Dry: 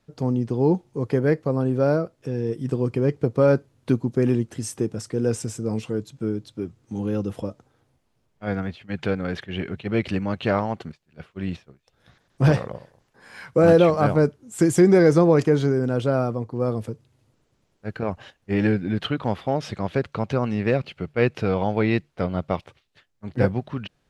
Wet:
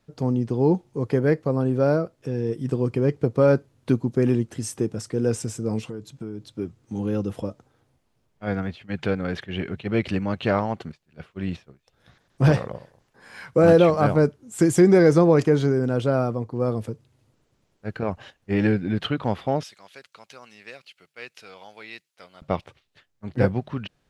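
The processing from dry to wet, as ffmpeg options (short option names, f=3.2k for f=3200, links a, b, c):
-filter_complex "[0:a]asettb=1/sr,asplit=3[a][b][c];[a]atrim=end=5.874[d];[b]atrim=start=5.87:end=6.53,asetpts=PTS-STARTPTS,afade=t=in:d=0.004:c=qsin,afade=t=out:st=0.656:d=0.004:c=qsin,acompressor=threshold=-29dB:ratio=6:attack=3.2:release=140:knee=1:detection=peak[e];[c]atrim=start=6.526[f];[d][e]acrossfade=d=0.004:c1=hsin:c2=qsin[g];[g][f]acrossfade=d=0.004:c1=qsin:c2=hsin,asettb=1/sr,asplit=3[h][i][j];[h]atrim=end=19.634[k];[i]atrim=start=19.63:end=22.42,asetpts=PTS-STARTPTS,afade=t=in:d=0.004:c=qsin,afade=t=out:st=2.786:d=0.004:c=qsin,aderivative[l];[j]atrim=start=22.416[m];[k][l]acrossfade=d=0.004:c1=hsin:c2=qsin[n];[n][m]acrossfade=d=0.004:c1=qsin:c2=hsin"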